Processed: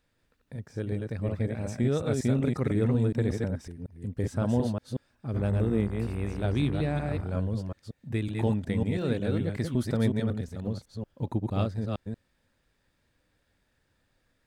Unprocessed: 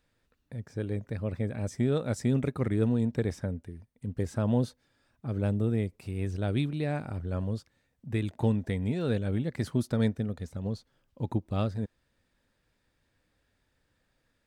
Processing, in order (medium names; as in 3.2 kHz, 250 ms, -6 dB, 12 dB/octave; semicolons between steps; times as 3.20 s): chunks repeated in reverse 184 ms, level -3 dB; 5.34–7.21 s: mains buzz 60 Hz, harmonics 35, -39 dBFS -6 dB/octave